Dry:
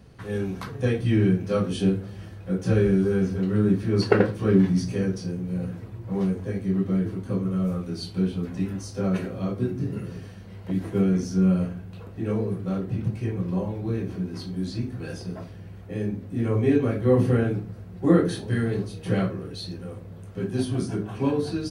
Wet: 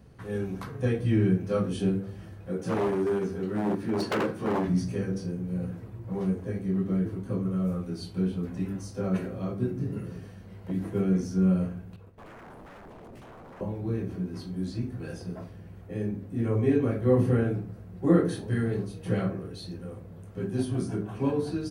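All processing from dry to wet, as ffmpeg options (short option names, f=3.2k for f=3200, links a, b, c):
-filter_complex "[0:a]asettb=1/sr,asplit=3[a][b][c];[a]atrim=end=2.474[d];[b]atrim=start=2.47:end=4.68,asetpts=PTS-STARTPTS,afade=t=in:d=0.004:c=qsin,afade=t=out:st=2.206:d=0.004:c=qsin,asplit=2[e][f];[f]adelay=13,volume=-5.5dB[g];[e][g]amix=inputs=2:normalize=0,atrim=end_sample=97461,aeval=exprs='0.133*(abs(mod(val(0)/0.133+3,4)-2)-1)':c=same,highpass=140[h];[c]atrim=start=4.676[i];[d][h]acrossfade=d=0.004:c1=hsin:c2=qsin[j];[j][i]acrossfade=d=0.004:c1=qsin:c2=hsin,asettb=1/sr,asplit=3[k][l][m];[k]atrim=end=11.964[n];[l]atrim=start=11.96:end=13.61,asetpts=PTS-STARTPTS,afade=t=in:d=0.004:c=qsin,afade=t=out:st=1.646:d=0.004:c=qsin,agate=range=-33dB:threshold=-34dB:ratio=3:release=100:detection=peak,acompressor=threshold=-30dB:ratio=5:attack=3.2:release=140:knee=1:detection=peak,aeval=exprs='0.0112*(abs(mod(val(0)/0.0112+3,4)-2)-1)':c=same[o];[m]atrim=start=13.606[p];[n][o]acrossfade=d=0.004:c1=hsin:c2=qsin[q];[q][p]acrossfade=d=0.004:c1=qsin:c2=hsin,equalizer=f=4k:t=o:w=1.8:g=-5,bandreject=f=97.47:t=h:w=4,bandreject=f=194.94:t=h:w=4,bandreject=f=292.41:t=h:w=4,bandreject=f=389.88:t=h:w=4,bandreject=f=487.35:t=h:w=4,bandreject=f=584.82:t=h:w=4,bandreject=f=682.29:t=h:w=4,bandreject=f=779.76:t=h:w=4,bandreject=f=877.23:t=h:w=4,bandreject=f=974.7:t=h:w=4,bandreject=f=1.07217k:t=h:w=4,bandreject=f=1.16964k:t=h:w=4,bandreject=f=1.26711k:t=h:w=4,bandreject=f=1.36458k:t=h:w=4,bandreject=f=1.46205k:t=h:w=4,bandreject=f=1.55952k:t=h:w=4,bandreject=f=1.65699k:t=h:w=4,bandreject=f=1.75446k:t=h:w=4,bandreject=f=1.85193k:t=h:w=4,bandreject=f=1.9494k:t=h:w=4,bandreject=f=2.04687k:t=h:w=4,bandreject=f=2.14434k:t=h:w=4,bandreject=f=2.24181k:t=h:w=4,bandreject=f=2.33928k:t=h:w=4,bandreject=f=2.43675k:t=h:w=4,bandreject=f=2.53422k:t=h:w=4,bandreject=f=2.63169k:t=h:w=4,bandreject=f=2.72916k:t=h:w=4,volume=-2.5dB"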